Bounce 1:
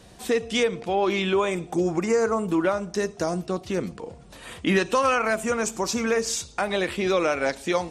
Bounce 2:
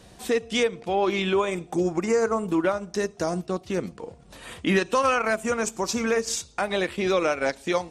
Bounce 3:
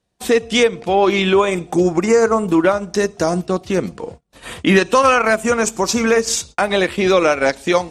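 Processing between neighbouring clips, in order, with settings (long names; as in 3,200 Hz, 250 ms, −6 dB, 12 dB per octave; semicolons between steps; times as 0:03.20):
transient designer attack −1 dB, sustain −6 dB
noise gate −43 dBFS, range −32 dB; level +9 dB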